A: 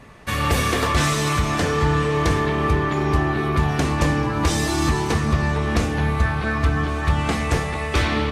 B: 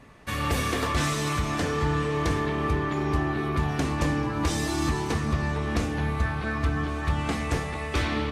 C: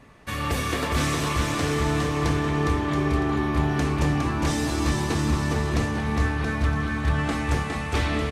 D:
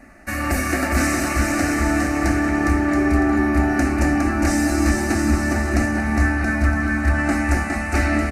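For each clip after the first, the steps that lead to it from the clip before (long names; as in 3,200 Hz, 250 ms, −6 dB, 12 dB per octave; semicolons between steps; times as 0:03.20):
parametric band 280 Hz +4 dB 0.27 octaves; level −6.5 dB
bouncing-ball delay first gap 410 ms, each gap 0.65×, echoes 5
phaser with its sweep stopped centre 680 Hz, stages 8; level +8.5 dB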